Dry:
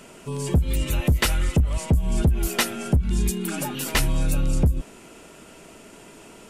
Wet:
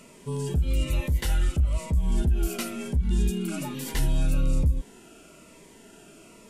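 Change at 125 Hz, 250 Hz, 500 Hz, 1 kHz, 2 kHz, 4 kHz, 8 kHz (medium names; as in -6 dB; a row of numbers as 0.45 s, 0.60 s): -4.0 dB, -4.5 dB, -4.5 dB, -8.0 dB, -9.5 dB, -8.5 dB, -8.0 dB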